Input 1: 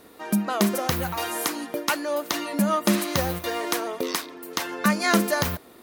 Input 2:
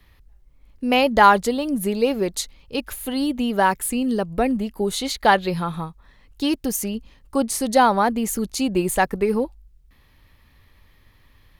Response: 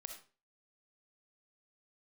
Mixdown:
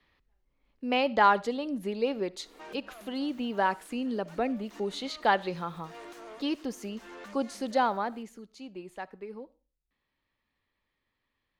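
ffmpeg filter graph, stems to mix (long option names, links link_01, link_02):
-filter_complex "[0:a]highshelf=frequency=5600:width_type=q:width=1.5:gain=8,acompressor=threshold=-29dB:ratio=6,asoftclip=type=tanh:threshold=-39dB,adelay=2400,volume=-4.5dB,asplit=2[link_01][link_02];[link_02]volume=-9.5dB[link_03];[1:a]deesser=0.35,volume=-10dB,afade=type=out:start_time=7.64:duration=0.78:silence=0.251189,asplit=3[link_04][link_05][link_06];[link_05]volume=-8.5dB[link_07];[link_06]apad=whole_len=362703[link_08];[link_01][link_08]sidechaincompress=threshold=-45dB:ratio=4:attack=5.7:release=122[link_09];[2:a]atrim=start_sample=2205[link_10];[link_03][link_07]amix=inputs=2:normalize=0[link_11];[link_11][link_10]afir=irnorm=-1:irlink=0[link_12];[link_09][link_04][link_12]amix=inputs=3:normalize=0,acrossover=split=180 5600:gain=0.2 1 0.112[link_13][link_14][link_15];[link_13][link_14][link_15]amix=inputs=3:normalize=0"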